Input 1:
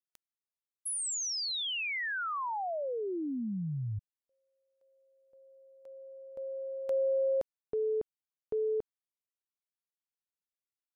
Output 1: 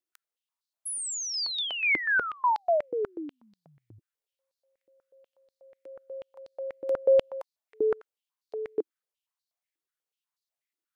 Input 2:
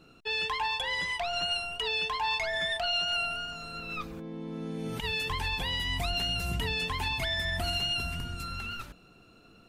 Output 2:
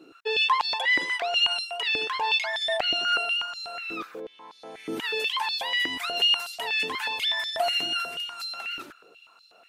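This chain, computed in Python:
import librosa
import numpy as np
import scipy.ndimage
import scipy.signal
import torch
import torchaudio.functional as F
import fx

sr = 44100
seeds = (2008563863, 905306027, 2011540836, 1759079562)

y = fx.filter_held_highpass(x, sr, hz=8.2, low_hz=320.0, high_hz=4300.0)
y = F.gain(torch.from_numpy(y), 1.0).numpy()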